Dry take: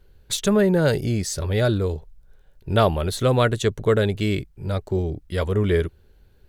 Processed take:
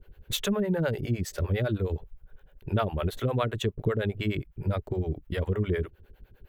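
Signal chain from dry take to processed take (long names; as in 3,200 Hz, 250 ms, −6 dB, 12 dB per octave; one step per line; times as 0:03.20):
flat-topped bell 6,500 Hz −11 dB
downward compressor 4 to 1, threshold −27 dBFS, peak gain reduction 12.5 dB
two-band tremolo in antiphase 9.8 Hz, depth 100%, crossover 440 Hz
level +6 dB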